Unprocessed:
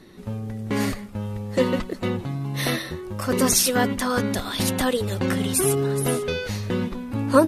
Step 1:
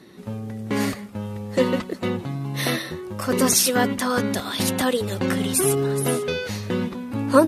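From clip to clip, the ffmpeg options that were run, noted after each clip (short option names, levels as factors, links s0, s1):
-af "highpass=110,volume=1.12"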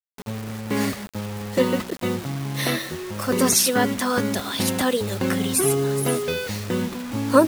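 -af "acrusher=bits=5:mix=0:aa=0.000001"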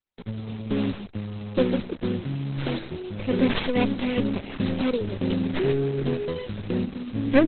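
-filter_complex "[0:a]acrossover=split=640[s0][s1];[s1]aeval=exprs='abs(val(0))':c=same[s2];[s0][s2]amix=inputs=2:normalize=0,aresample=22050,aresample=44100" -ar 48000 -c:a libopus -b:a 8k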